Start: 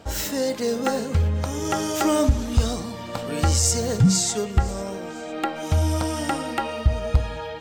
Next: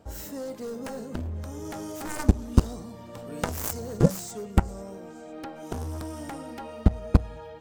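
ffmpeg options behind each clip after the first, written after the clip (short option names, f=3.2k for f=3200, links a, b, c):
-af "aeval=exprs='0.422*(cos(1*acos(clip(val(0)/0.422,-1,1)))-cos(1*PI/2))+0.211*(cos(3*acos(clip(val(0)/0.422,-1,1)))-cos(3*PI/2))+0.0168*(cos(5*acos(clip(val(0)/0.422,-1,1)))-cos(5*PI/2))':c=same,equalizer=f=3.2k:w=0.45:g=-9.5,volume=3dB"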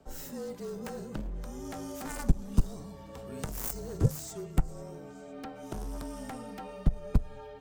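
-filter_complex "[0:a]acrossover=split=240|7400[a][b][c];[b]alimiter=limit=-22dB:level=0:latency=1:release=220[d];[a][d][c]amix=inputs=3:normalize=0,afreqshift=-37,volume=-3.5dB"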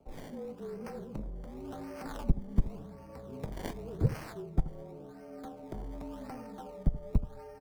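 -filter_complex "[0:a]acrossover=split=1200[a][b];[a]aecho=1:1:79:0.211[c];[b]acrusher=samples=23:mix=1:aa=0.000001:lfo=1:lforange=23:lforate=0.9[d];[c][d]amix=inputs=2:normalize=0,volume=-2.5dB"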